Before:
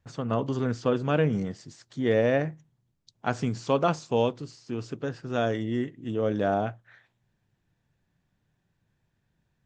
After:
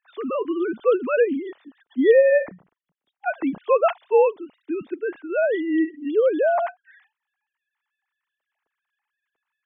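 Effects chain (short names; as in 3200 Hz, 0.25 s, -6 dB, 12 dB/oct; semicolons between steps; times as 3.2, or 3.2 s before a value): sine-wave speech; gain +6 dB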